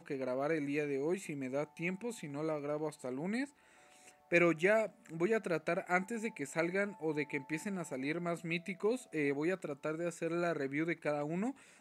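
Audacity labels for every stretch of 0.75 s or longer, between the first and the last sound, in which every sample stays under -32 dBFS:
3.430000	4.320000	silence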